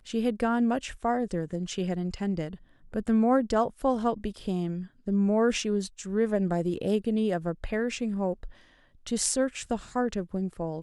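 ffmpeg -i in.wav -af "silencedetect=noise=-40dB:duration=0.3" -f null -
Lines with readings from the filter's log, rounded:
silence_start: 2.55
silence_end: 2.93 | silence_duration: 0.38
silence_start: 8.51
silence_end: 9.07 | silence_duration: 0.56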